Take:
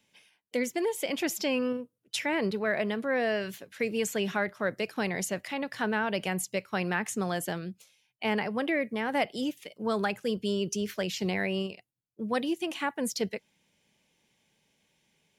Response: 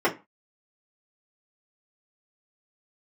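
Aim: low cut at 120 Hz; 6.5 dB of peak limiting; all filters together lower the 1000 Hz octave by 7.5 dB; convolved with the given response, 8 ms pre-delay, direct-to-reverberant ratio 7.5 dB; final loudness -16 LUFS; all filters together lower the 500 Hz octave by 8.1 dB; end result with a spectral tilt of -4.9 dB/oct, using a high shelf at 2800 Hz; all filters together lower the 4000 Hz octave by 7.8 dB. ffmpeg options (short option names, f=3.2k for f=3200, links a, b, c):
-filter_complex "[0:a]highpass=120,equalizer=f=500:t=o:g=-8.5,equalizer=f=1k:t=o:g=-5.5,highshelf=f=2.8k:g=-7.5,equalizer=f=4k:t=o:g=-4.5,alimiter=level_in=3.5dB:limit=-24dB:level=0:latency=1,volume=-3.5dB,asplit=2[a][b];[1:a]atrim=start_sample=2205,adelay=8[c];[b][c]afir=irnorm=-1:irlink=0,volume=-23dB[d];[a][d]amix=inputs=2:normalize=0,volume=21dB"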